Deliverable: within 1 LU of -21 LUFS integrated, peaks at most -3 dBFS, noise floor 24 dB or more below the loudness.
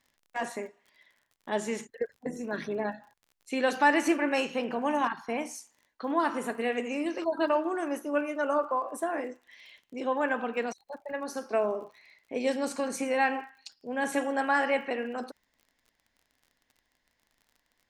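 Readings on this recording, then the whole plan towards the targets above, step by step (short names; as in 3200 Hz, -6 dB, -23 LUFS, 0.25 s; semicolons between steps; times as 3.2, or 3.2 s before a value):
ticks 34/s; loudness -30.5 LUFS; peak -10.5 dBFS; loudness target -21.0 LUFS
-> de-click; gain +9.5 dB; limiter -3 dBFS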